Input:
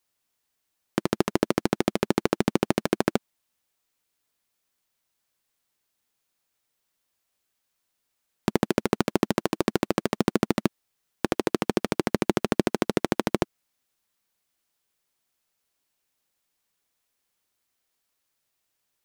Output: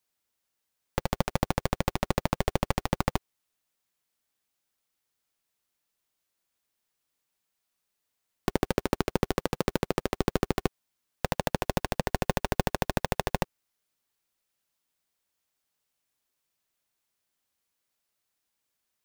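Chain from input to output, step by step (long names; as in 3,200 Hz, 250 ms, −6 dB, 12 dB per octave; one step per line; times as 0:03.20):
ring modulator with a square carrier 180 Hz
level −3.5 dB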